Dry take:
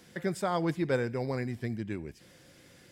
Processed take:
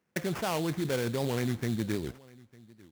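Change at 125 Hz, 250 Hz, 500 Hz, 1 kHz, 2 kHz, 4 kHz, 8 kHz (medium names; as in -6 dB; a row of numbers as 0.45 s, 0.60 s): +2.0 dB, +1.5 dB, -0.5 dB, -1.5 dB, +0.5 dB, +7.0 dB, +7.5 dB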